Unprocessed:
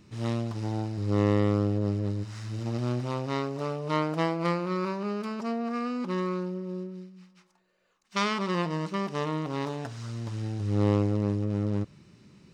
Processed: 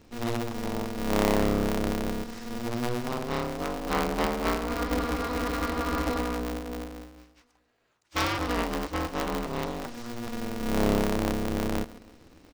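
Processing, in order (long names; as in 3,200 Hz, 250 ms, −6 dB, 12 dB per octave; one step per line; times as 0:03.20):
repeating echo 143 ms, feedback 44%, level −17.5 dB
frozen spectrum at 0:04.73, 1.46 s
ring modulator with a square carrier 120 Hz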